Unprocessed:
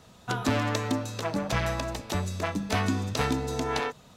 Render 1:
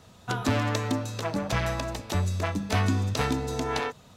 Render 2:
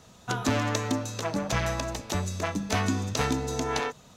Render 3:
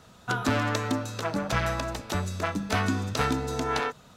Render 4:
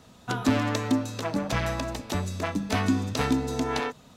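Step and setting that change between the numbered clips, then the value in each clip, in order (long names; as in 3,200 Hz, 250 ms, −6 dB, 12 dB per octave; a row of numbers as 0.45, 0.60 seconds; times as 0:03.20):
parametric band, centre frequency: 94, 6,400, 1,400, 260 Hertz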